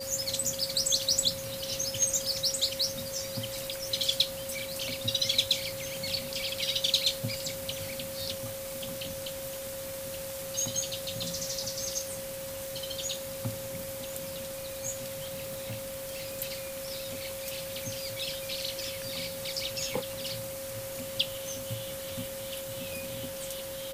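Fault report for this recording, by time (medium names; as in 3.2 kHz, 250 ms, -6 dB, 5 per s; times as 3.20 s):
whine 540 Hz -38 dBFS
15.32–16.40 s: clipped -32 dBFS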